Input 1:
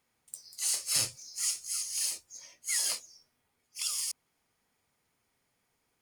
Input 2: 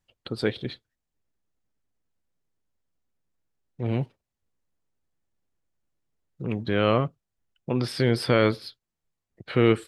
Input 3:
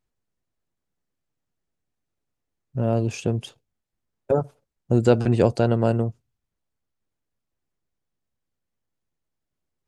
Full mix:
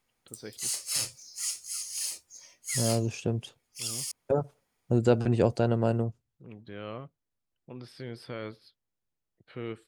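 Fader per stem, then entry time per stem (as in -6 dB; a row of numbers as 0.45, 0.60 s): -1.5, -18.0, -5.5 dB; 0.00, 0.00, 0.00 s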